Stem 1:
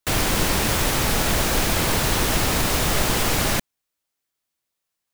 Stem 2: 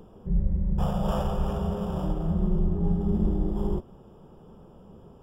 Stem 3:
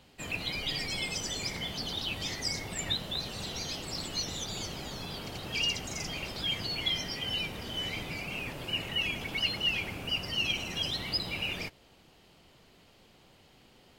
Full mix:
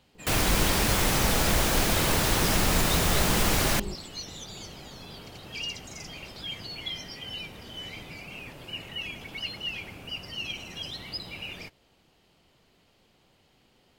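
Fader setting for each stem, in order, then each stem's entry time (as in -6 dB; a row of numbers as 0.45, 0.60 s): -3.5, -8.0, -4.5 dB; 0.20, 0.15, 0.00 s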